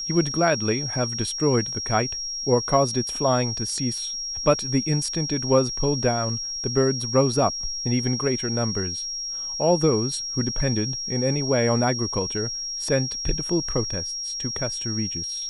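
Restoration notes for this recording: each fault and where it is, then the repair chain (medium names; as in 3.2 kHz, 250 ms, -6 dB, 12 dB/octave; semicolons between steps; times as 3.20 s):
whine 5.6 kHz -28 dBFS
3.98 s: dropout 2.8 ms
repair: band-stop 5.6 kHz, Q 30; interpolate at 3.98 s, 2.8 ms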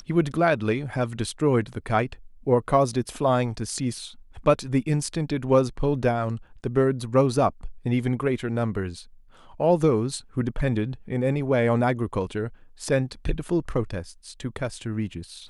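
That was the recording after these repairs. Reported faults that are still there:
nothing left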